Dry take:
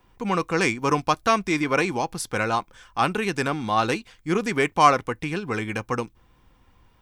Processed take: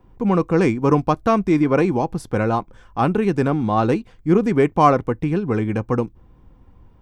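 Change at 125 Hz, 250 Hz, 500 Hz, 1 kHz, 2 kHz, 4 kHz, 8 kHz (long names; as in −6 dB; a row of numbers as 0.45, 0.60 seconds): +9.5 dB, +8.5 dB, +6.5 dB, +1.0 dB, −4.5 dB, −8.0 dB, can't be measured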